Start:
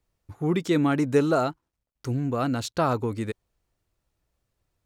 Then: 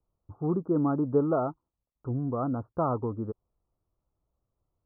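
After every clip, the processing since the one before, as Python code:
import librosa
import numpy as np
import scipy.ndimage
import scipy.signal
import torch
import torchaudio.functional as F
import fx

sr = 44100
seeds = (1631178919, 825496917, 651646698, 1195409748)

y = scipy.signal.sosfilt(scipy.signal.butter(12, 1300.0, 'lowpass', fs=sr, output='sos'), x)
y = y * librosa.db_to_amplitude(-3.5)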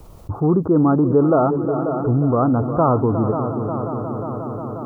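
y = fx.echo_heads(x, sr, ms=179, heads='second and third', feedback_pct=61, wet_db=-15.0)
y = fx.env_flatten(y, sr, amount_pct=50)
y = y * librosa.db_to_amplitude(8.0)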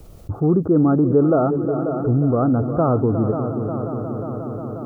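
y = fx.peak_eq(x, sr, hz=980.0, db=-11.5, octaves=0.47)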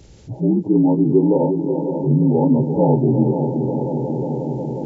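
y = fx.partial_stretch(x, sr, pct=76)
y = fx.rider(y, sr, range_db=3, speed_s=2.0)
y = y * librosa.db_to_amplitude(3.5)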